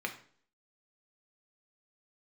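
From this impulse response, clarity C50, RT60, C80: 11.0 dB, 0.50 s, 15.5 dB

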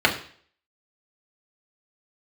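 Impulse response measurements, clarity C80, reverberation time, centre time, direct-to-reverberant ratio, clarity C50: 14.0 dB, 0.50 s, 15 ms, -1.5 dB, 11.0 dB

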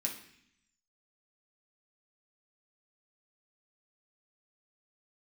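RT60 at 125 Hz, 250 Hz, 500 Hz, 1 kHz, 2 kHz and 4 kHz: 1.0, 1.0, 0.65, 0.65, 0.90, 0.85 s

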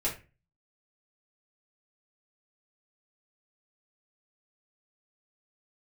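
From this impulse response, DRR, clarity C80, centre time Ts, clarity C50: -6.5 dB, 16.0 dB, 21 ms, 10.0 dB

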